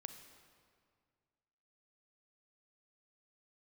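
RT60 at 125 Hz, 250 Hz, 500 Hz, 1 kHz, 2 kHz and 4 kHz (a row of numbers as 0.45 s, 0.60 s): 2.4 s, 2.2 s, 2.1 s, 2.0 s, 1.8 s, 1.5 s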